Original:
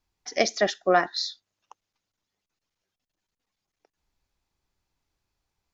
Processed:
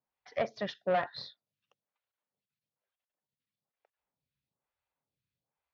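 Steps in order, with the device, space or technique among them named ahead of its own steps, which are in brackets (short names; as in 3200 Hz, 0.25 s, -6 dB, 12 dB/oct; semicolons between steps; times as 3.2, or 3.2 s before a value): vibe pedal into a guitar amplifier (photocell phaser 1.1 Hz; tube stage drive 21 dB, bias 0.5; speaker cabinet 99–3900 Hz, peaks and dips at 140 Hz +9 dB, 340 Hz -9 dB, 550 Hz +5 dB); gain -3.5 dB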